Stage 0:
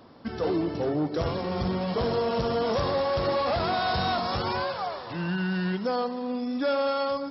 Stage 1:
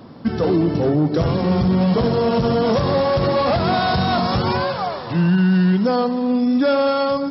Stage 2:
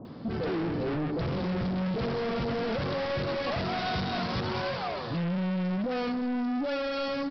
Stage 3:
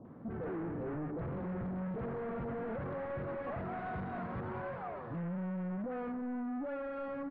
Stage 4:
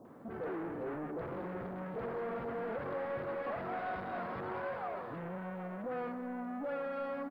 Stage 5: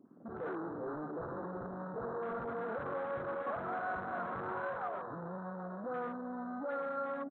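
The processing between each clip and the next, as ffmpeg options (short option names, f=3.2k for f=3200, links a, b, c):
-af "equalizer=f=160:w=0.8:g=9.5,alimiter=limit=-17dB:level=0:latency=1:release=51,volume=7dB"
-filter_complex "[0:a]aresample=11025,asoftclip=type=tanh:threshold=-25.5dB,aresample=44100,acrossover=split=910[a][b];[b]adelay=50[c];[a][c]amix=inputs=2:normalize=0,volume=-2.5dB"
-af "lowpass=f=1.8k:w=0.5412,lowpass=f=1.8k:w=1.3066,volume=-8.5dB"
-filter_complex "[0:a]bass=f=250:g=-12,treble=f=4k:g=12,asplit=2[a][b];[b]adelay=780,lowpass=f=2k:p=1,volume=-12dB,asplit=2[c][d];[d]adelay=780,lowpass=f=2k:p=1,volume=0.53,asplit=2[e][f];[f]adelay=780,lowpass=f=2k:p=1,volume=0.53,asplit=2[g][h];[h]adelay=780,lowpass=f=2k:p=1,volume=0.53,asplit=2[i][j];[j]adelay=780,lowpass=f=2k:p=1,volume=0.53,asplit=2[k][l];[l]adelay=780,lowpass=f=2k:p=1,volume=0.53[m];[a][c][e][g][i][k][m]amix=inputs=7:normalize=0,volume=2.5dB"
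-af "highshelf=f=1.9k:t=q:w=3:g=-9.5,afwtdn=0.00794,volume=-1.5dB"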